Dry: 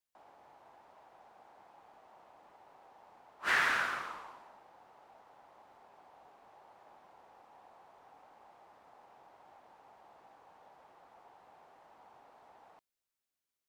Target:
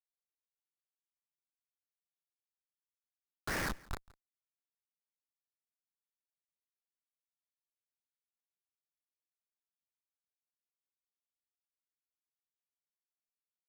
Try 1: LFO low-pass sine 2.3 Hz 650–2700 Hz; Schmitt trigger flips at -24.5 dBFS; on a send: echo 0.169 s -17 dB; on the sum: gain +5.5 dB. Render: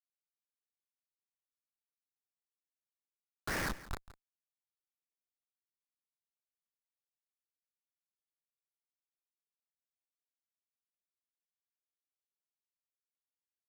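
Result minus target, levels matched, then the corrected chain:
echo-to-direct +6.5 dB
LFO low-pass sine 2.3 Hz 650–2700 Hz; Schmitt trigger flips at -24.5 dBFS; on a send: echo 0.169 s -23.5 dB; on the sum: gain +5.5 dB

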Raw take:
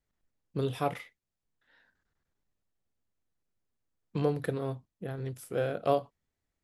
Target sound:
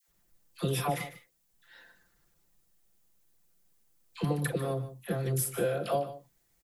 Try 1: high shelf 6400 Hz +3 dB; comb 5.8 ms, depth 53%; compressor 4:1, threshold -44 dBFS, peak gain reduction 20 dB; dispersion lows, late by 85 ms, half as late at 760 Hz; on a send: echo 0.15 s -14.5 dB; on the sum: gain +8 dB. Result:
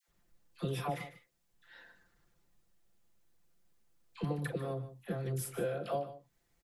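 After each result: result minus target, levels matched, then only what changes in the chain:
compressor: peak gain reduction +5.5 dB; 8000 Hz band -4.5 dB
change: compressor 4:1, threshold -36.5 dBFS, peak gain reduction 14 dB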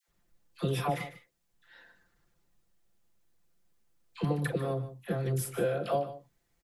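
8000 Hz band -6.0 dB
change: high shelf 6400 Hz +14.5 dB

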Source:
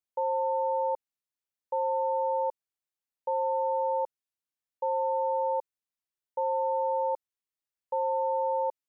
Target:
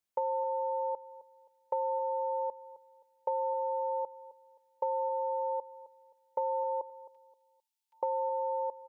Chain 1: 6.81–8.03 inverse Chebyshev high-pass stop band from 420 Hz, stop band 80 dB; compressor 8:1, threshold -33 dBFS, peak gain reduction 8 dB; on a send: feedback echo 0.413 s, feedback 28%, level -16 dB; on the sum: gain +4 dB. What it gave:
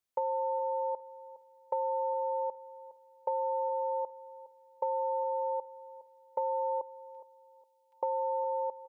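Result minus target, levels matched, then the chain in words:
echo 0.15 s late
6.81–8.03 inverse Chebyshev high-pass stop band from 420 Hz, stop band 80 dB; compressor 8:1, threshold -33 dBFS, peak gain reduction 8 dB; on a send: feedback echo 0.263 s, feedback 28%, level -16 dB; on the sum: gain +4 dB

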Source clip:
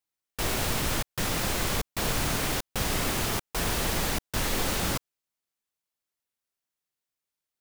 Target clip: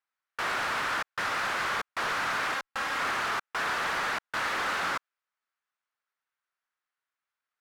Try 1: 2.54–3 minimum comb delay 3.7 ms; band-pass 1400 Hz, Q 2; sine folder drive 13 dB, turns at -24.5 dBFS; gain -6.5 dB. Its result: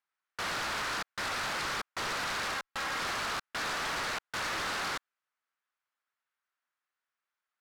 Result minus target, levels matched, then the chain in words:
sine folder: distortion +13 dB
2.54–3 minimum comb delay 3.7 ms; band-pass 1400 Hz, Q 2; sine folder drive 13 dB, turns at -18.5 dBFS; gain -6.5 dB

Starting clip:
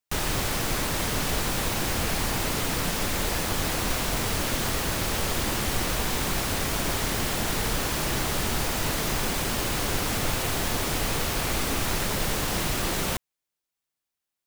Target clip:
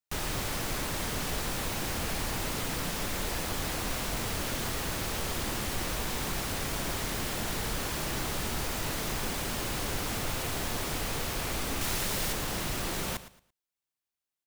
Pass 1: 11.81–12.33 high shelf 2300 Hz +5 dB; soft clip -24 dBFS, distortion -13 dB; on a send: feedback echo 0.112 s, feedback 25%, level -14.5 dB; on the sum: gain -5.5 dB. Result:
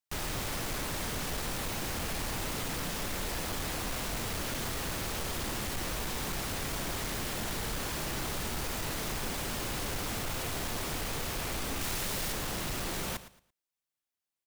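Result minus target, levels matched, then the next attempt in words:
soft clip: distortion +12 dB
11.81–12.33 high shelf 2300 Hz +5 dB; soft clip -15.5 dBFS, distortion -25 dB; on a send: feedback echo 0.112 s, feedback 25%, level -14.5 dB; on the sum: gain -5.5 dB

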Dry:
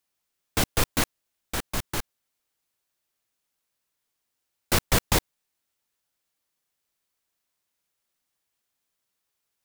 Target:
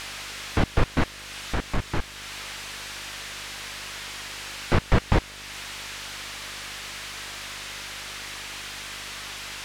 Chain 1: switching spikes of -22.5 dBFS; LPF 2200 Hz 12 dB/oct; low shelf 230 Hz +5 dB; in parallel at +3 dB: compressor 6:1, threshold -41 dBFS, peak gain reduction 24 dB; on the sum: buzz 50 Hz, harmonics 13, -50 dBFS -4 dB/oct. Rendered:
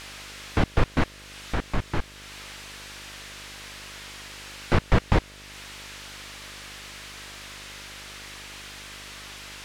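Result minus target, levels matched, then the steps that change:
switching spikes: distortion -5 dB
change: switching spikes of -16.5 dBFS

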